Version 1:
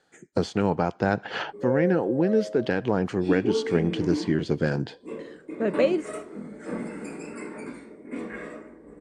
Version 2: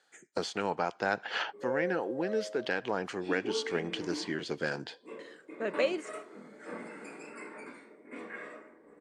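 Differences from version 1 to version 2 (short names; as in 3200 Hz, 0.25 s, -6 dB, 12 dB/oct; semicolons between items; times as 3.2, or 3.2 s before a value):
background: add high shelf 4200 Hz -10.5 dB; master: add HPF 1100 Hz 6 dB/oct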